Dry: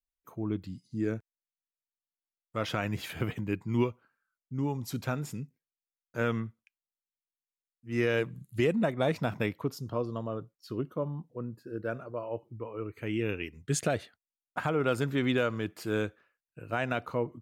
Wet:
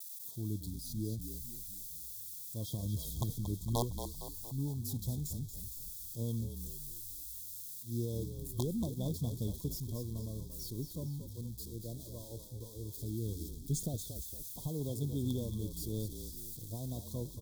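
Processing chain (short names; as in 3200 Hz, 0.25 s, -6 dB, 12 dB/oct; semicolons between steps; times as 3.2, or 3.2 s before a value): switching spikes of -27.5 dBFS; passive tone stack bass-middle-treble 10-0-1; reverse; upward compressor, threshold -54 dBFS; reverse; vibrato 0.95 Hz 32 cents; wrapped overs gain 35 dB; on a send: frequency-shifting echo 0.23 s, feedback 53%, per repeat -42 Hz, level -8.5 dB; on the sum: FFT band-reject 1100–3200 Hz; mismatched tape noise reduction decoder only; gain +10.5 dB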